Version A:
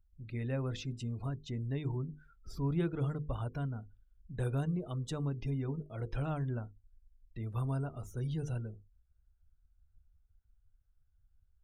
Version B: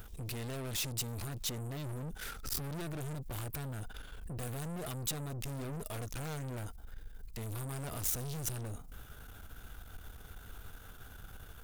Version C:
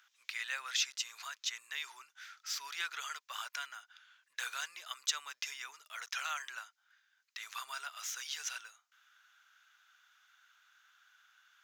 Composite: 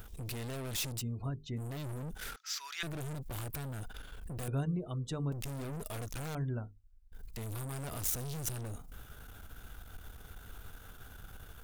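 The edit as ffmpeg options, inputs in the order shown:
ffmpeg -i take0.wav -i take1.wav -i take2.wav -filter_complex "[0:a]asplit=3[link_01][link_02][link_03];[1:a]asplit=5[link_04][link_05][link_06][link_07][link_08];[link_04]atrim=end=1.03[link_09];[link_01]atrim=start=0.97:end=1.62[link_10];[link_05]atrim=start=1.56:end=2.362[link_11];[2:a]atrim=start=2.358:end=2.832[link_12];[link_06]atrim=start=2.828:end=4.482[link_13];[link_02]atrim=start=4.478:end=5.322[link_14];[link_07]atrim=start=5.318:end=6.352[link_15];[link_03]atrim=start=6.348:end=7.122[link_16];[link_08]atrim=start=7.118[link_17];[link_09][link_10]acrossfade=duration=0.06:curve1=tri:curve2=tri[link_18];[link_18][link_11]acrossfade=duration=0.06:curve1=tri:curve2=tri[link_19];[link_19][link_12]acrossfade=duration=0.004:curve1=hsin:curve2=hsin[link_20];[link_20][link_13]acrossfade=duration=0.004:curve1=hsin:curve2=hsin[link_21];[link_21][link_14]acrossfade=duration=0.004:curve1=hsin:curve2=hsin[link_22];[link_22][link_15]acrossfade=duration=0.004:curve1=hsin:curve2=hsin[link_23];[link_23][link_16]acrossfade=duration=0.004:curve1=hsin:curve2=hsin[link_24];[link_24][link_17]acrossfade=duration=0.004:curve1=hsin:curve2=hsin" out.wav

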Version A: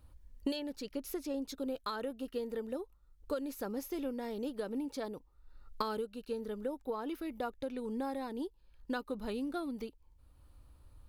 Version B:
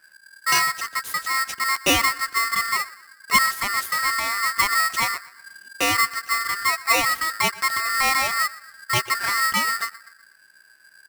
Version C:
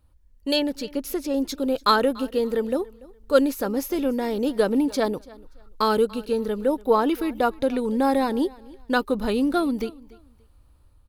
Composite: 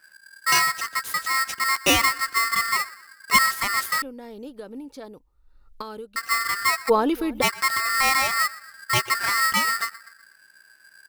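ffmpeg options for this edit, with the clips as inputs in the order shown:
ffmpeg -i take0.wav -i take1.wav -i take2.wav -filter_complex "[1:a]asplit=3[link_01][link_02][link_03];[link_01]atrim=end=4.022[link_04];[0:a]atrim=start=4.018:end=6.162[link_05];[link_02]atrim=start=6.158:end=6.9[link_06];[2:a]atrim=start=6.88:end=7.43[link_07];[link_03]atrim=start=7.41[link_08];[link_04][link_05]acrossfade=duration=0.004:curve1=hsin:curve2=hsin[link_09];[link_09][link_06]acrossfade=duration=0.004:curve1=hsin:curve2=hsin[link_10];[link_10][link_07]acrossfade=duration=0.02:curve1=tri:curve2=tri[link_11];[link_11][link_08]acrossfade=duration=0.02:curve1=tri:curve2=tri" out.wav

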